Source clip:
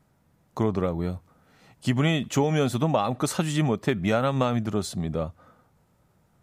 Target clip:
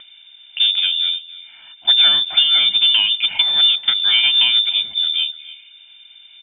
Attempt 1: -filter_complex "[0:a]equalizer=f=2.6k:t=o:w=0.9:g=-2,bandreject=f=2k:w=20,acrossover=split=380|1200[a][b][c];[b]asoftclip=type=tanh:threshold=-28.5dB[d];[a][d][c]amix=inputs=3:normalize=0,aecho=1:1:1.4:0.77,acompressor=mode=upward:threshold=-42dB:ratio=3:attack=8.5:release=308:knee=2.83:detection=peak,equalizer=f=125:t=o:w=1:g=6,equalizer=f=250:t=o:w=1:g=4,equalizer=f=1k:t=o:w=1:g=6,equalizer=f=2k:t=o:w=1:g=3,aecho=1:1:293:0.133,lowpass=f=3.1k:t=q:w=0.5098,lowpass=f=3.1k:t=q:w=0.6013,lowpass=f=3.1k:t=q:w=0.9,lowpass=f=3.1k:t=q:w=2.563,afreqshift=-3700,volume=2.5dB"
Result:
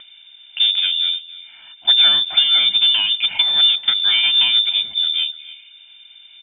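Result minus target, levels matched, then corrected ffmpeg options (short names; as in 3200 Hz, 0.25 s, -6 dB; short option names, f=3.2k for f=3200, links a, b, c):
soft clip: distortion +9 dB
-filter_complex "[0:a]equalizer=f=2.6k:t=o:w=0.9:g=-2,bandreject=f=2k:w=20,acrossover=split=380|1200[a][b][c];[b]asoftclip=type=tanh:threshold=-19.5dB[d];[a][d][c]amix=inputs=3:normalize=0,aecho=1:1:1.4:0.77,acompressor=mode=upward:threshold=-42dB:ratio=3:attack=8.5:release=308:knee=2.83:detection=peak,equalizer=f=125:t=o:w=1:g=6,equalizer=f=250:t=o:w=1:g=4,equalizer=f=1k:t=o:w=1:g=6,equalizer=f=2k:t=o:w=1:g=3,aecho=1:1:293:0.133,lowpass=f=3.1k:t=q:w=0.5098,lowpass=f=3.1k:t=q:w=0.6013,lowpass=f=3.1k:t=q:w=0.9,lowpass=f=3.1k:t=q:w=2.563,afreqshift=-3700,volume=2.5dB"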